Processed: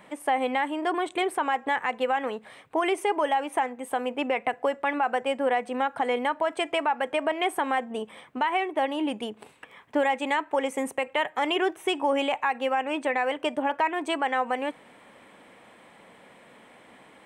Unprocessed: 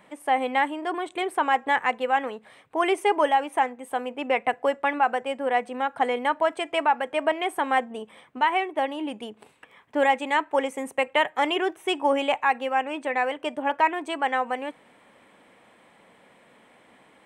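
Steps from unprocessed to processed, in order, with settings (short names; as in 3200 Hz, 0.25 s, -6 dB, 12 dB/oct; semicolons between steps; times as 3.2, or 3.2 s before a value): compressor 2.5:1, threshold -25 dBFS, peak gain reduction 7 dB; limiter -19 dBFS, peak gain reduction 4.5 dB; gain +3.5 dB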